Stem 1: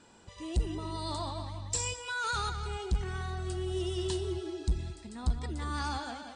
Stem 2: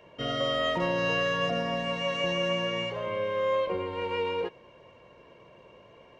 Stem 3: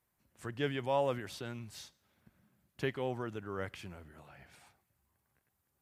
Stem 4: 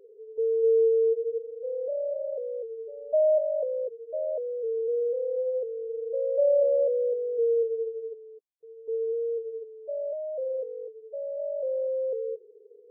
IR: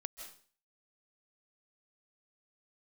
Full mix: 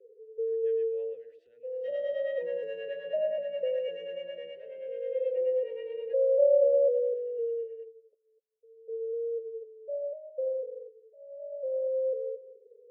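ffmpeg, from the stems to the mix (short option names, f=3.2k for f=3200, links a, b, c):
-filter_complex "[0:a]acompressor=threshold=-41dB:ratio=6,adelay=900,volume=-15.5dB[a];[1:a]aecho=1:1:5.3:0.54,adelay=1650,volume=-5.5dB[b];[2:a]adelay=50,volume=-13dB,asplit=2[c][d];[d]volume=-7.5dB[e];[3:a]lowshelf=f=400:g=6.5,asplit=2[f][g];[g]afreqshift=-0.3[h];[f][h]amix=inputs=2:normalize=1,volume=2.5dB,asplit=2[i][j];[j]volume=-3.5dB[k];[4:a]atrim=start_sample=2205[l];[e][k]amix=inputs=2:normalize=0[m];[m][l]afir=irnorm=-1:irlink=0[n];[a][b][c][i][n]amix=inputs=5:normalize=0,asplit=3[o][p][q];[o]bandpass=f=530:t=q:w=8,volume=0dB[r];[p]bandpass=f=1.84k:t=q:w=8,volume=-6dB[s];[q]bandpass=f=2.48k:t=q:w=8,volume=-9dB[t];[r][s][t]amix=inputs=3:normalize=0,acrossover=split=480[u][v];[u]aeval=exprs='val(0)*(1-0.7/2+0.7/2*cos(2*PI*9.4*n/s))':c=same[w];[v]aeval=exprs='val(0)*(1-0.7/2-0.7/2*cos(2*PI*9.4*n/s))':c=same[x];[w][x]amix=inputs=2:normalize=0"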